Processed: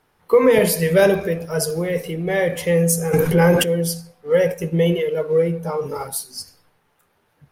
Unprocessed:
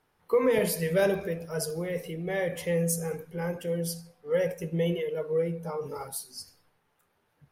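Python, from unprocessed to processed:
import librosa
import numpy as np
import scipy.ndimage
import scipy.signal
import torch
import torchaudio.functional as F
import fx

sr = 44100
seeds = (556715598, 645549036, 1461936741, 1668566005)

p1 = np.sign(x) * np.maximum(np.abs(x) - 10.0 ** (-47.0 / 20.0), 0.0)
p2 = x + (p1 * librosa.db_to_amplitude(-11.0))
p3 = fx.env_flatten(p2, sr, amount_pct=70, at=(3.12, 3.63), fade=0.02)
y = p3 * librosa.db_to_amplitude(8.0)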